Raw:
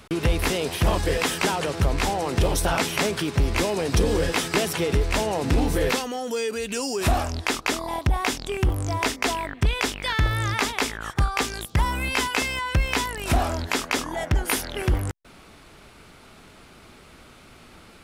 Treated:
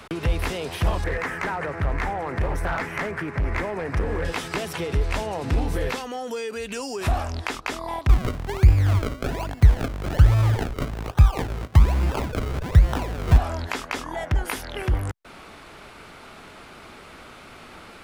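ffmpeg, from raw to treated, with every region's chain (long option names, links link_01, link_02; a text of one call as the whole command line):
ffmpeg -i in.wav -filter_complex "[0:a]asettb=1/sr,asplit=3[link_01][link_02][link_03];[link_01]atrim=end=1.044[link_04];[link_02]atrim=start=1.04:end=4.25,asetpts=PTS-STARTPTS,afade=type=in:duration=0.004:curve=qsin,afade=type=out:start_time=3.206:duration=0.004:curve=qsin,highshelf=frequency=2600:width_type=q:width=3:gain=-10,asoftclip=type=hard:threshold=-18.5dB[link_05];[link_03]atrim=start=4.246[link_06];[link_04][link_05]acrossfade=duration=0.004:curve1=hsin:curve2=qsin[link_07];[link_07][link_06]acrossfade=duration=0.004:curve1=qsin:curve2=hsin,asettb=1/sr,asplit=3[link_08][link_09][link_10];[link_08]atrim=end=8.094[link_11];[link_09]atrim=start=8.09:end=13.38,asetpts=PTS-STARTPTS,afade=type=in:duration=0.004:curve=qsin,afade=type=out:start_time=5.286:duration=0.004:curve=qsin,equalizer=frequency=86:width_type=o:width=2.7:gain=10,acrusher=samples=35:mix=1:aa=0.000001:lfo=1:lforange=35:lforate=1.2[link_12];[link_10]atrim=start=13.376[link_13];[link_11][link_12]acrossfade=duration=0.004:curve1=hsin:curve2=qsin[link_14];[link_14][link_13]acrossfade=duration=0.004:curve1=qsin:curve2=hsin,acrossover=split=140[link_15][link_16];[link_16]acompressor=threshold=-40dB:ratio=2[link_17];[link_15][link_17]amix=inputs=2:normalize=0,equalizer=frequency=1100:width=0.32:gain=7.5" out.wav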